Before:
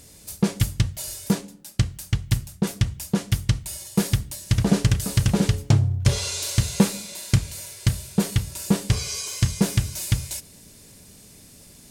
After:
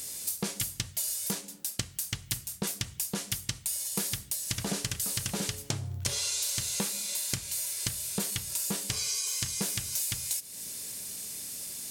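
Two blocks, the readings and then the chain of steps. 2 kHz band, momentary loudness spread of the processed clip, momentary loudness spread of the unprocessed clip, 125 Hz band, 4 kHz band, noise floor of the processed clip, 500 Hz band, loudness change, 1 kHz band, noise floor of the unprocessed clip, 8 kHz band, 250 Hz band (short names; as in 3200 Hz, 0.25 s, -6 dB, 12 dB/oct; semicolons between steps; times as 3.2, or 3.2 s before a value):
-6.0 dB, 7 LU, 7 LU, -18.0 dB, -2.5 dB, -49 dBFS, -11.5 dB, -7.0 dB, -9.0 dB, -49 dBFS, +1.0 dB, -15.5 dB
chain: tilt +3 dB/oct; compressor 4:1, threshold -33 dBFS, peak gain reduction 14.5 dB; gain +2 dB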